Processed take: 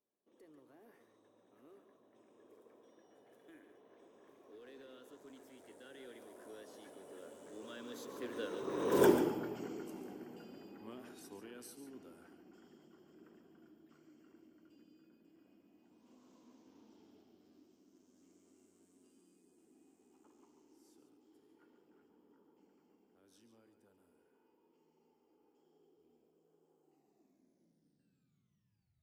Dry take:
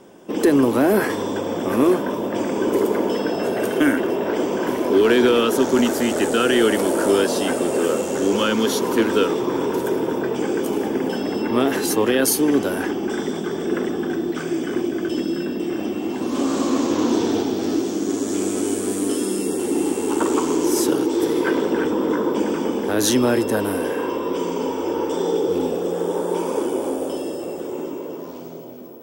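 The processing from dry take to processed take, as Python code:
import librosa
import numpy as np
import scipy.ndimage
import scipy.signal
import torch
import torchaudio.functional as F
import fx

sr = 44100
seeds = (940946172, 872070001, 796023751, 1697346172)

y = fx.tape_stop_end(x, sr, length_s=2.89)
y = fx.doppler_pass(y, sr, speed_mps=29, closest_m=1.7, pass_at_s=9.04)
y = y + 10.0 ** (-10.0 / 20.0) * np.pad(y, (int(141 * sr / 1000.0), 0))[:len(y)]
y = y * 10.0 ** (-2.5 / 20.0)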